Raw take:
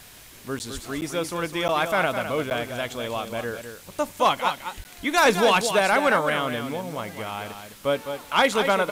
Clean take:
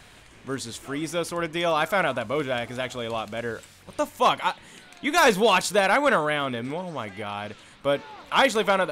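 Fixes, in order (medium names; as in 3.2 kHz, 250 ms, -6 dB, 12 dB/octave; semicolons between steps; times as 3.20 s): de-plosive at 0.73/4.76 s; interpolate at 0.59/1.01/1.68/2.50/4.84 s, 9.7 ms; noise print and reduce 6 dB; inverse comb 207 ms -8.5 dB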